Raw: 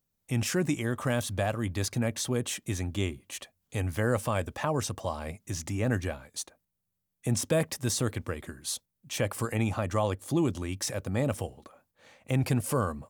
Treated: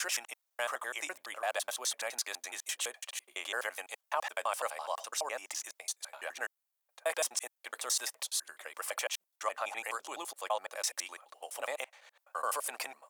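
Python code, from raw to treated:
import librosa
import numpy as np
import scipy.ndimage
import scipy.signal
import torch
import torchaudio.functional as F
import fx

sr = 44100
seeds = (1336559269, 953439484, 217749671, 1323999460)

y = fx.block_reorder(x, sr, ms=84.0, group=7)
y = scipy.signal.sosfilt(scipy.signal.butter(4, 670.0, 'highpass', fs=sr, output='sos'), y)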